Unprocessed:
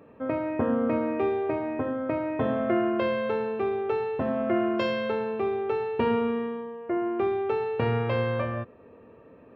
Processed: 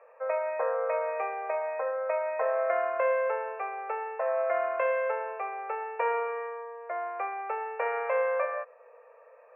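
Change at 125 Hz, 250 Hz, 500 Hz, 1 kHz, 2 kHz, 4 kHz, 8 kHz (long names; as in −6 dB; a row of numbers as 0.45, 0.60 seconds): below −40 dB, below −30 dB, −2.5 dB, +1.5 dB, +1.0 dB, below −15 dB, can't be measured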